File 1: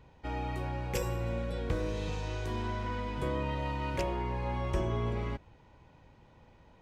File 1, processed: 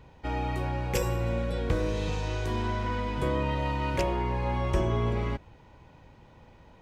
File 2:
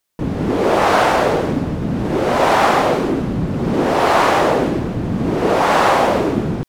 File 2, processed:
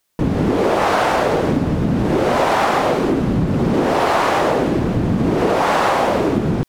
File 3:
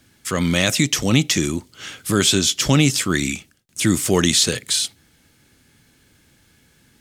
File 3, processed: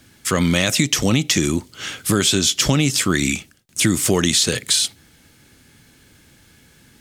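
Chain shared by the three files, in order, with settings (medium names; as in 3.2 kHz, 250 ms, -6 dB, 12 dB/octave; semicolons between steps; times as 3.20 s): compression 6:1, threshold -18 dBFS; trim +5 dB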